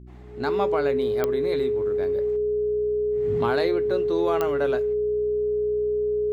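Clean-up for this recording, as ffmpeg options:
ffmpeg -i in.wav -af "adeclick=threshold=4,bandreject=frequency=61.7:width_type=h:width=4,bandreject=frequency=123.4:width_type=h:width=4,bandreject=frequency=185.1:width_type=h:width=4,bandreject=frequency=246.8:width_type=h:width=4,bandreject=frequency=308.5:width_type=h:width=4,bandreject=frequency=370.2:width_type=h:width=4,bandreject=frequency=420:width=30" out.wav

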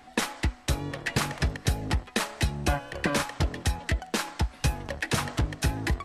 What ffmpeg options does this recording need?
ffmpeg -i in.wav -af "bandreject=frequency=740:width=30" out.wav

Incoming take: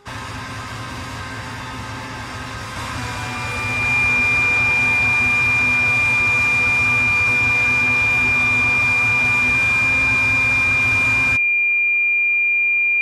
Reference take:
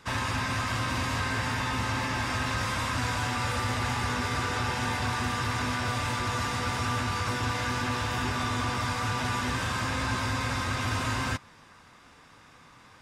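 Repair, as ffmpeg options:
ffmpeg -i in.wav -af "bandreject=frequency=406.8:width_type=h:width=4,bandreject=frequency=813.6:width_type=h:width=4,bandreject=frequency=1220.4:width_type=h:width=4,bandreject=frequency=2400:width=30,asetnsamples=nb_out_samples=441:pad=0,asendcmd='2.76 volume volume -3dB',volume=0dB" out.wav

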